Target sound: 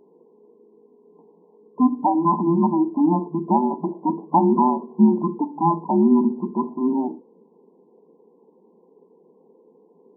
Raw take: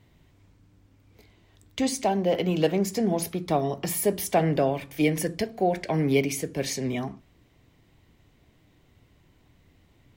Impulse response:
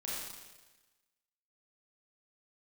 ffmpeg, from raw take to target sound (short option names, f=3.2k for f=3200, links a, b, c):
-af "afftfilt=real='real(if(between(b,1,1008),(2*floor((b-1)/24)+1)*24-b,b),0)':imag='imag(if(between(b,1,1008),(2*floor((b-1)/24)+1)*24-b,b),0)*if(between(b,1,1008),-1,1)':win_size=2048:overlap=0.75,afftfilt=real='re*between(b*sr/4096,160,1100)':imag='im*between(b*sr/4096,160,1100)':win_size=4096:overlap=0.75,adynamicequalizer=threshold=0.00891:dfrequency=230:dqfactor=1.9:tfrequency=230:tqfactor=1.9:attack=5:release=100:ratio=0.375:range=3:mode=boostabove:tftype=bell,volume=5dB"